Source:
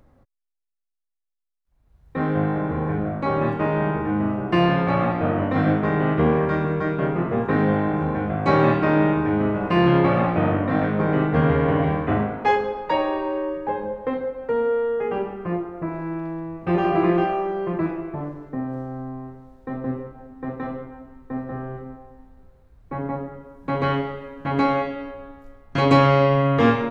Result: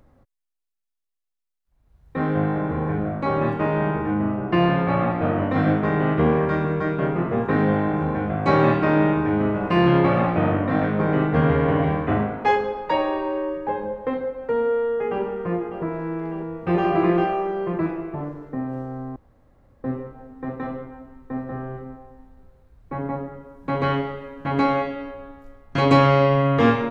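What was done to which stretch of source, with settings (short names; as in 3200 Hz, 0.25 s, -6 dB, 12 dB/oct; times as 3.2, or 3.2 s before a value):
4.14–5.22 air absorption 140 m
14.6–15.23 echo throw 0.6 s, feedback 65%, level -10 dB
19.16–19.84 room tone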